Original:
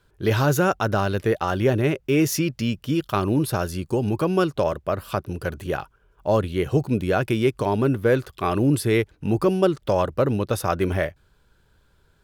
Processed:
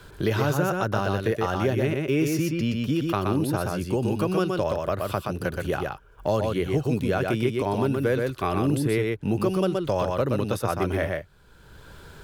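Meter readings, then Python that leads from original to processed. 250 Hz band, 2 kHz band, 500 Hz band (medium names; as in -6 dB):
-2.5 dB, -2.5 dB, -2.5 dB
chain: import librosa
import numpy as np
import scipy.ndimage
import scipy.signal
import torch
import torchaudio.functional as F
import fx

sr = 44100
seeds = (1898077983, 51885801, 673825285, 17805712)

p1 = x + fx.echo_single(x, sr, ms=123, db=-4.0, dry=0)
p2 = fx.band_squash(p1, sr, depth_pct=70)
y = p2 * librosa.db_to_amplitude(-4.5)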